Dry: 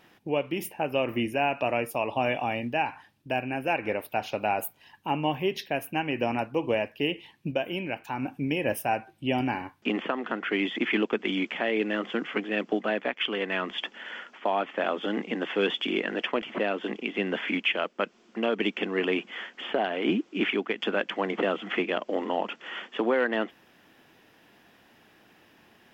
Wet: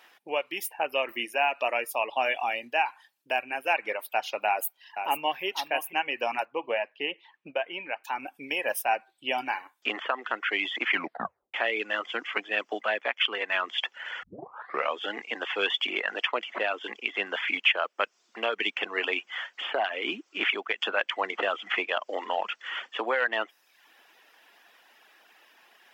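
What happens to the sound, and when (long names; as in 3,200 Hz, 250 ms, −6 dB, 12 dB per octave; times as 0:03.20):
0:04.47–0:05.43: delay throw 490 ms, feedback 10%, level −8 dB
0:06.45–0:08.04: low-pass filter 2,500 Hz
0:10.90: tape stop 0.64 s
0:14.23: tape start 0.74 s
whole clip: reverb reduction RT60 0.68 s; high-pass filter 730 Hz 12 dB per octave; level +4 dB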